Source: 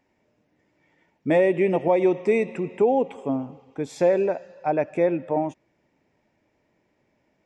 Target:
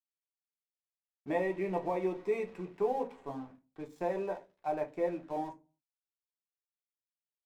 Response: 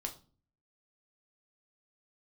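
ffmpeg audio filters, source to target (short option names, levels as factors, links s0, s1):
-filter_complex "[0:a]equalizer=f=990:w=2.8:g=11,aeval=exprs='sgn(val(0))*max(abs(val(0))-0.00891,0)':c=same[s0];[1:a]atrim=start_sample=2205,asetrate=79380,aresample=44100[s1];[s0][s1]afir=irnorm=-1:irlink=0,volume=0.398"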